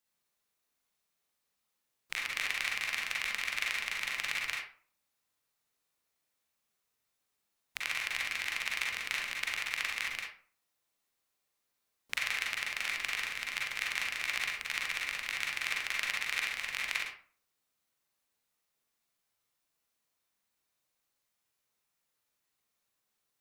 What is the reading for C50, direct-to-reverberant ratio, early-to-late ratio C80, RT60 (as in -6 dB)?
1.5 dB, -3.0 dB, 7.5 dB, 0.45 s